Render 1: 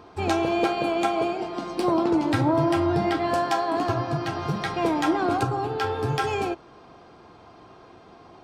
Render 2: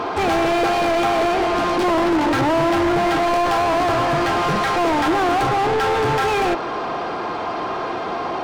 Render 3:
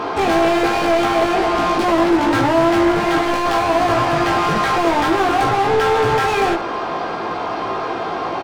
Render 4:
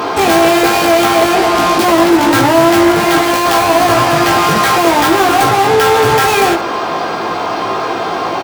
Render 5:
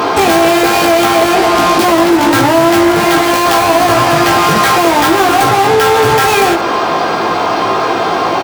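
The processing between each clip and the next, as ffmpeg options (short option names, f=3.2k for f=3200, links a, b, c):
-filter_complex "[0:a]asplit=2[a][b];[b]highpass=f=720:p=1,volume=37dB,asoftclip=type=tanh:threshold=-11.5dB[c];[a][c]amix=inputs=2:normalize=0,lowpass=f=1.8k:p=1,volume=-6dB,acrusher=bits=11:mix=0:aa=0.000001"
-af "aecho=1:1:18|73:0.708|0.251"
-af "highpass=65,aemphasis=mode=production:type=50fm,volume=6dB"
-af "acompressor=threshold=-12dB:ratio=3,volume=4.5dB"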